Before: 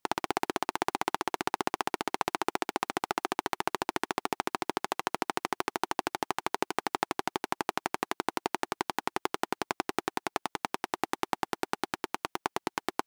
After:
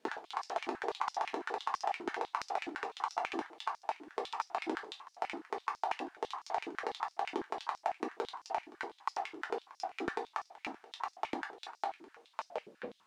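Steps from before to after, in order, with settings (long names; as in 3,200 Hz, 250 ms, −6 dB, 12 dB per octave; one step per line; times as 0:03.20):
turntable brake at the end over 0.94 s
leveller curve on the samples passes 1
brickwall limiter −20 dBFS, peak gain reduction 12 dB
output level in coarse steps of 19 dB
parametric band 12,000 Hz −8 dB 0.57 octaves
background noise pink −70 dBFS
high-frequency loss of the air 55 metres
rectangular room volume 140 cubic metres, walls furnished, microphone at 1.5 metres
high-pass on a step sequencer 12 Hz 310–5,300 Hz
level −1.5 dB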